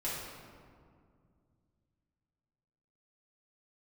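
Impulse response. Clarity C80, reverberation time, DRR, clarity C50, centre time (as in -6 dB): 1.5 dB, 2.2 s, -9.5 dB, -0.5 dB, 102 ms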